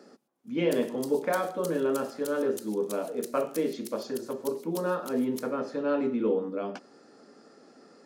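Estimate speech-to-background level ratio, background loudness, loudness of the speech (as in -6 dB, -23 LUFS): 16.0 dB, -46.0 LUFS, -30.0 LUFS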